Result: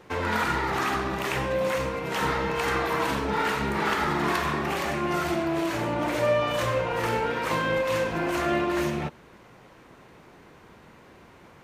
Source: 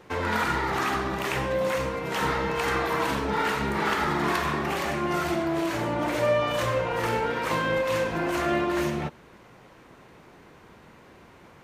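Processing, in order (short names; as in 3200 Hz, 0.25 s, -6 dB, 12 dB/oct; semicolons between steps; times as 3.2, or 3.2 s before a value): rattling part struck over -39 dBFS, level -35 dBFS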